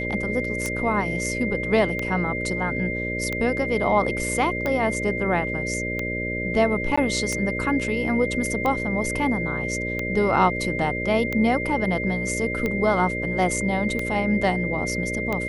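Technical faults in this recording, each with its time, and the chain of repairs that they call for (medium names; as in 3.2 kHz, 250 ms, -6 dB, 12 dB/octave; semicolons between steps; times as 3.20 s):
buzz 60 Hz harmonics 10 -30 dBFS
tick 45 rpm -13 dBFS
whine 2.1 kHz -28 dBFS
6.96–6.97 s: dropout 15 ms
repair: de-click; de-hum 60 Hz, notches 10; band-stop 2.1 kHz, Q 30; interpolate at 6.96 s, 15 ms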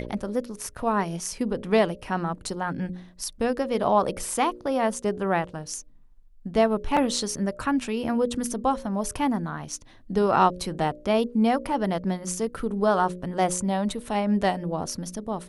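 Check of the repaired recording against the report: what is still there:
nothing left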